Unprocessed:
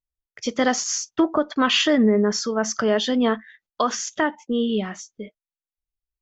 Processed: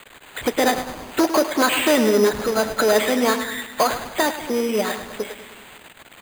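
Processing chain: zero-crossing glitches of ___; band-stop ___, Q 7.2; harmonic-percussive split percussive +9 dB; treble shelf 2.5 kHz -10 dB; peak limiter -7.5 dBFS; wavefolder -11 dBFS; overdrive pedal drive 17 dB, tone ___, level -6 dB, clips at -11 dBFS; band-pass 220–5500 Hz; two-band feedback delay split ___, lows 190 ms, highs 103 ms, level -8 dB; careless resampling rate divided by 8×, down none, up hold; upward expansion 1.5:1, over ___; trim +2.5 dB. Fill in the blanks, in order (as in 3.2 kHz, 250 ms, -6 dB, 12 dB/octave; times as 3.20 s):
-14.5 dBFS, 1.2 kHz, 1.4 kHz, 310 Hz, -30 dBFS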